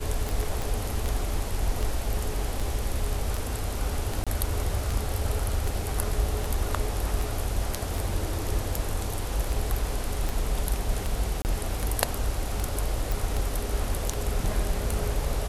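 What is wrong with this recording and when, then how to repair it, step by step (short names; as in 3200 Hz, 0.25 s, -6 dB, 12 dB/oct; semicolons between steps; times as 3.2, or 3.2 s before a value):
tick 78 rpm
0.62 pop
4.24–4.27 gap 26 ms
11.42–11.45 gap 29 ms
13.12 pop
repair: de-click; interpolate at 4.24, 26 ms; interpolate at 11.42, 29 ms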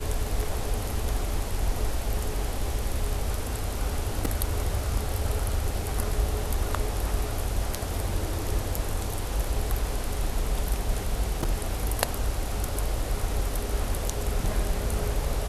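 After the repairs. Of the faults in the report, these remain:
none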